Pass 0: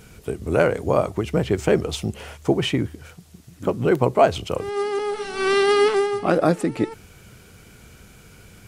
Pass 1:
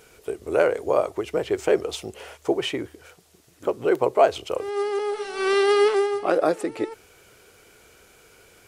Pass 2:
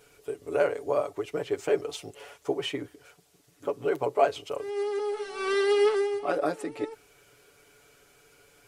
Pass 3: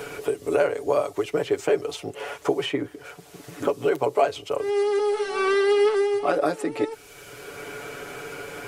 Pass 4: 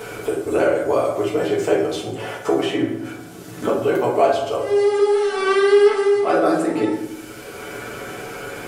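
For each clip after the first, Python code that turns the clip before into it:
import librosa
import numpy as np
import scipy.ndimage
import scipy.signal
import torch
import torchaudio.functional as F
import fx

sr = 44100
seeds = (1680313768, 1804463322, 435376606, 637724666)

y1 = fx.low_shelf_res(x, sr, hz=280.0, db=-11.5, q=1.5)
y1 = y1 * 10.0 ** (-3.0 / 20.0)
y2 = y1 + 0.72 * np.pad(y1, (int(7.0 * sr / 1000.0), 0))[:len(y1)]
y2 = y2 * 10.0 ** (-7.5 / 20.0)
y3 = fx.band_squash(y2, sr, depth_pct=70)
y3 = y3 * 10.0 ** (5.0 / 20.0)
y4 = fx.rev_fdn(y3, sr, rt60_s=0.92, lf_ratio=1.5, hf_ratio=0.6, size_ms=27.0, drr_db=-4.0)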